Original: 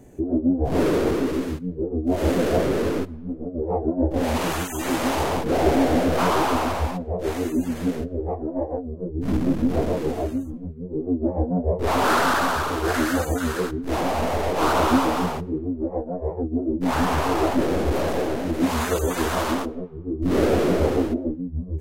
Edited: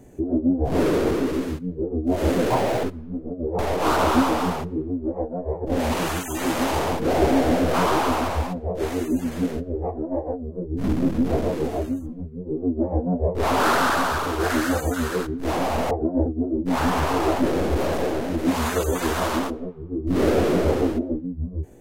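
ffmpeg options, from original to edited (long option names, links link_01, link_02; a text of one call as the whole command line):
ffmpeg -i in.wav -filter_complex "[0:a]asplit=7[link_01][link_02][link_03][link_04][link_05][link_06][link_07];[link_01]atrim=end=2.504[link_08];[link_02]atrim=start=2.5:end=2.99,asetpts=PTS-STARTPTS,asetrate=63945,aresample=44100[link_09];[link_03]atrim=start=2.986:end=3.742[link_10];[link_04]atrim=start=14.348:end=16.412[link_11];[link_05]atrim=start=4.088:end=14.352[link_12];[link_06]atrim=start=3.738:end=4.092[link_13];[link_07]atrim=start=16.408[link_14];[link_08][link_09]acrossfade=duration=0.004:curve1=hsin:curve2=hsin[link_15];[link_15][link_10]acrossfade=duration=0.004:curve1=hsin:curve2=hsin[link_16];[link_16][link_11]acrossfade=duration=0.004:curve1=hsin:curve2=hsin[link_17];[link_17][link_12]acrossfade=duration=0.004:curve1=hsin:curve2=hsin[link_18];[link_18][link_13]acrossfade=duration=0.004:curve1=hsin:curve2=hsin[link_19];[link_19][link_14]acrossfade=duration=0.004:curve1=hsin:curve2=hsin" out.wav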